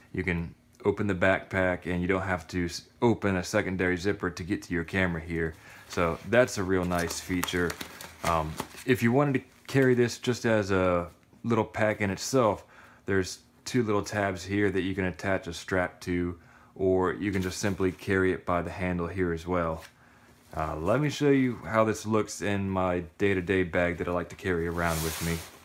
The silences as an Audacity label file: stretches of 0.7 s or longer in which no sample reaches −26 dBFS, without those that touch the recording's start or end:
19.730000	20.570000	silence